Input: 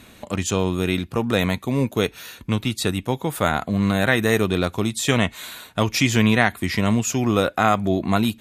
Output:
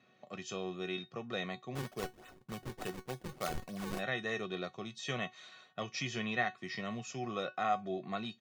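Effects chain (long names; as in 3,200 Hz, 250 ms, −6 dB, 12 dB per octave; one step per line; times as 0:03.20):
Chebyshev band-pass filter 130–6,100 Hz, order 4
comb filter 1.6 ms, depth 51%
0:01.75–0:03.99: sample-and-hold swept by an LFO 38×, swing 160% 3.4 Hz
tuned comb filter 370 Hz, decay 0.17 s, harmonics all, mix 80%
one half of a high-frequency compander decoder only
level −7 dB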